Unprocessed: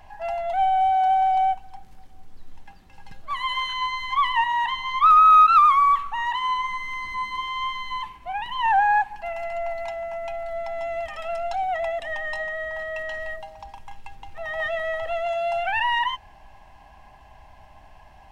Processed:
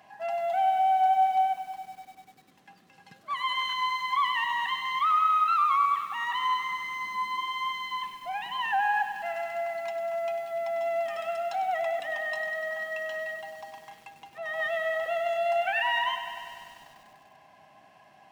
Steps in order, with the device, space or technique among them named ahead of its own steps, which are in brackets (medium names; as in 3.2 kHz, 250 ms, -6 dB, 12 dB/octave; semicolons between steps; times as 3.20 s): PA system with an anti-feedback notch (high-pass 150 Hz 24 dB/octave; Butterworth band-stop 890 Hz, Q 6.6; peak limiter -16.5 dBFS, peak gain reduction 9 dB); bit-crushed delay 98 ms, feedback 80%, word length 8-bit, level -11 dB; trim -3 dB